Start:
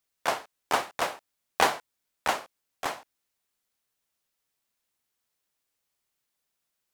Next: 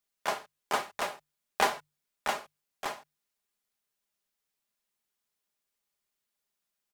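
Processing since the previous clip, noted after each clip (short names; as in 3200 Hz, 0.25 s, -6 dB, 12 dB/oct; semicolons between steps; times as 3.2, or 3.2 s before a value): notches 50/100/150 Hz; comb 4.9 ms, depth 42%; gain -4.5 dB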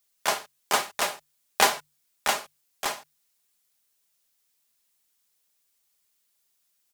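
high shelf 3100 Hz +10.5 dB; gain +3.5 dB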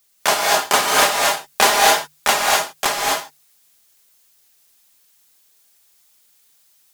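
in parallel at +2.5 dB: limiter -14.5 dBFS, peak gain reduction 10 dB; on the sum: soft clip -6 dBFS, distortion -20 dB; non-linear reverb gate 0.28 s rising, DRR -2 dB; gain +3 dB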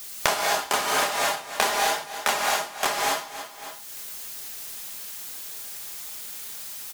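feedback echo 0.276 s, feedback 25%, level -19 dB; three-band squash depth 100%; gain -7.5 dB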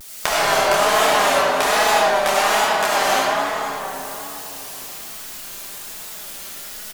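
echo 0.46 s -14.5 dB; digital reverb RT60 3.9 s, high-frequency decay 0.3×, pre-delay 35 ms, DRR -7.5 dB; vibrato 1.2 Hz 79 cents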